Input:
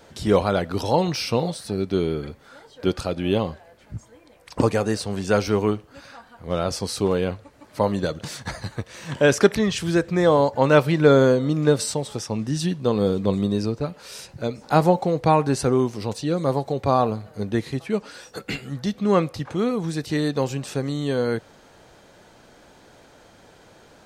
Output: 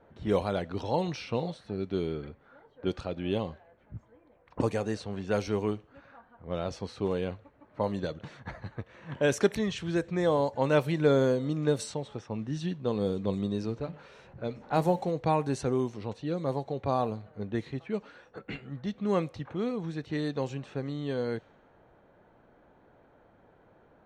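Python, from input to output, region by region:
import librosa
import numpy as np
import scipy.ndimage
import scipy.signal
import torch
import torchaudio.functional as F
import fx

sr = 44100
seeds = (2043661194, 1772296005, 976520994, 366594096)

y = fx.chain(x, sr, fx.law_mismatch(coded='mu'),
    fx.hum_notches(base_hz=50, count=6), at=(13.61, 15.11))
y = fx.notch(y, sr, hz=4900.0, q=7.3)
y = fx.env_lowpass(y, sr, base_hz=1400.0, full_db=-14.0)
y = fx.dynamic_eq(y, sr, hz=1300.0, q=3.2, threshold_db=-38.0, ratio=4.0, max_db=-4)
y = y * librosa.db_to_amplitude(-8.5)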